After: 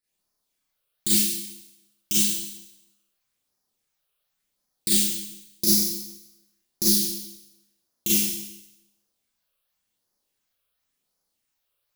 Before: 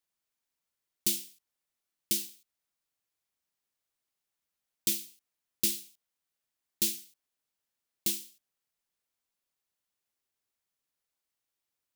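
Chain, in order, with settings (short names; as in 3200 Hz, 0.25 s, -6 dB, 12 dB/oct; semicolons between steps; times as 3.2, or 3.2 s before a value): in parallel at +2.5 dB: level quantiser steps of 17 dB; on the sum: phaser stages 8, 0.92 Hz, lowest notch 240–3000 Hz; Schroeder reverb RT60 0.88 s, combs from 30 ms, DRR -9 dB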